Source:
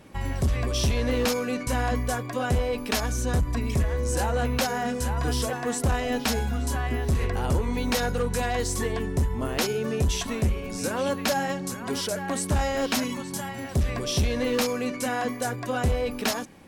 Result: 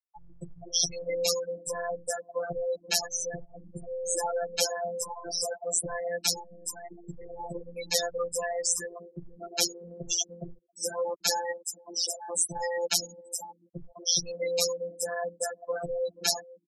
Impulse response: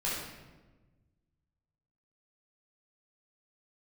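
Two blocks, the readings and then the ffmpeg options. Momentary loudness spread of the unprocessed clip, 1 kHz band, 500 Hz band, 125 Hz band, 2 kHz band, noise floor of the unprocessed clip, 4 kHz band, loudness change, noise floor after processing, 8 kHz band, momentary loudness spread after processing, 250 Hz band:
4 LU, -7.0 dB, -3.5 dB, -21.5 dB, -8.0 dB, -35 dBFS, +1.0 dB, -3.5 dB, -62 dBFS, +4.0 dB, 16 LU, -18.0 dB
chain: -filter_complex "[0:a]bass=f=250:g=-8,treble=f=4k:g=13,afftfilt=real='re*gte(hypot(re,im),0.141)':imag='im*gte(hypot(re,im),0.141)':win_size=1024:overlap=0.75,afftfilt=real='hypot(re,im)*cos(PI*b)':imag='0':win_size=1024:overlap=0.75,acrossover=split=170|510|6500[a][b][c][d];[b]aecho=1:1:482:0.335[e];[c]acontrast=65[f];[a][e][f][d]amix=inputs=4:normalize=0,volume=-3.5dB"

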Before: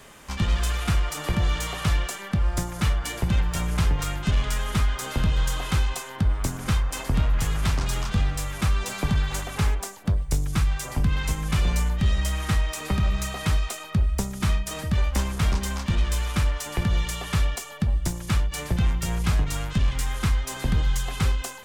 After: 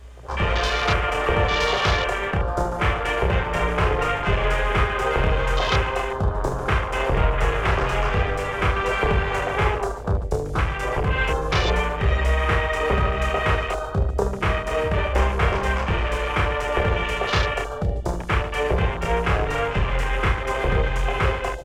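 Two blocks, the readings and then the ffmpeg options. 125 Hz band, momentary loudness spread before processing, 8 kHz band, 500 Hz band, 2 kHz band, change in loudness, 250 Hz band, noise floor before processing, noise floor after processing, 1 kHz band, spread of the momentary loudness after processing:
0.0 dB, 3 LU, -7.5 dB, +14.5 dB, +9.5 dB, +3.5 dB, -0.5 dB, -39 dBFS, -29 dBFS, +11.0 dB, 4 LU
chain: -filter_complex "[0:a]lowshelf=f=320:t=q:w=3:g=-9,acrossover=split=7500[a][b];[a]aeval=exprs='0.224*sin(PI/2*1.78*val(0)/0.224)':c=same[c];[c][b]amix=inputs=2:normalize=0,aeval=exprs='val(0)+0.0112*(sin(2*PI*60*n/s)+sin(2*PI*2*60*n/s)/2+sin(2*PI*3*60*n/s)/3+sin(2*PI*4*60*n/s)/4+sin(2*PI*5*60*n/s)/5)':c=same,aecho=1:1:30|75|142.5|243.8|395.6:0.631|0.398|0.251|0.158|0.1,afwtdn=0.0501"

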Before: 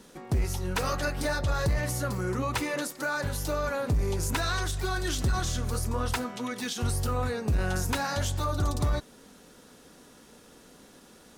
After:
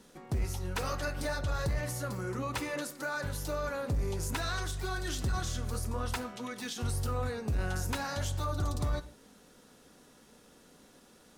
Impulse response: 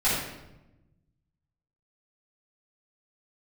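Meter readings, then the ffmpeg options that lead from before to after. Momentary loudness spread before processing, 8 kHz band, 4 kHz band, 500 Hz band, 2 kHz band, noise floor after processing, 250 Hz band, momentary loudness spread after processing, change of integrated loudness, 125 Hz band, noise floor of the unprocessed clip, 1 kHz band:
3 LU, -5.5 dB, -5.5 dB, -5.0 dB, -5.5 dB, -60 dBFS, -6.0 dB, 3 LU, -5.0 dB, -5.0 dB, -54 dBFS, -5.5 dB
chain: -filter_complex "[0:a]asplit=2[a][b];[1:a]atrim=start_sample=2205,atrim=end_sample=6615[c];[b][c]afir=irnorm=-1:irlink=0,volume=-25.5dB[d];[a][d]amix=inputs=2:normalize=0,volume=-6dB"

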